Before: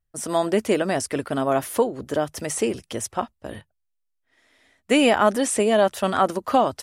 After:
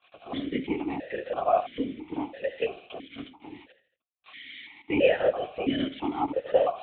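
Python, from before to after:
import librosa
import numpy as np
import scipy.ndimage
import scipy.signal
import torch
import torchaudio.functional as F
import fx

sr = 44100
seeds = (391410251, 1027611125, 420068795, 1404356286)

p1 = x + 0.5 * 10.0 ** (-20.0 / 20.0) * np.diff(np.sign(x), prepend=np.sign(x[:1]))
p2 = p1 + fx.echo_feedback(p1, sr, ms=76, feedback_pct=43, wet_db=-15, dry=0)
p3 = fx.lpc_vocoder(p2, sr, seeds[0], excitation='whisper', order=10)
p4 = fx.vowel_held(p3, sr, hz=3.0)
y = p4 * 10.0 ** (5.5 / 20.0)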